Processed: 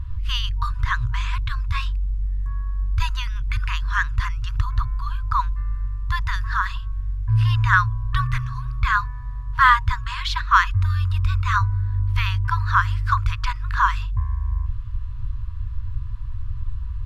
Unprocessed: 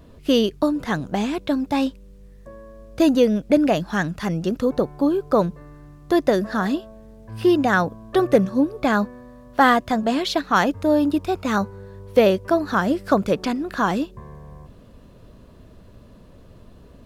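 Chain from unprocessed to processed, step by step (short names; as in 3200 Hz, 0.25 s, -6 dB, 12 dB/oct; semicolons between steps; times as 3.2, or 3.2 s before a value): FFT band-reject 120–940 Hz; RIAA curve playback; gain +5.5 dB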